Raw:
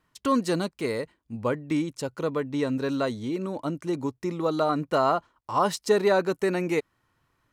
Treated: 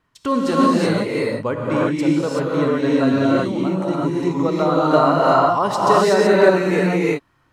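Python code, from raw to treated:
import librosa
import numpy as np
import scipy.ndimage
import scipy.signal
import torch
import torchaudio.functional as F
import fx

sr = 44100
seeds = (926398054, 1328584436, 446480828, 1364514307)

y = fx.high_shelf(x, sr, hz=6900.0, db=-9.0)
y = fx.rev_gated(y, sr, seeds[0], gate_ms=400, shape='rising', drr_db=-6.0)
y = y * 10.0 ** (3.0 / 20.0)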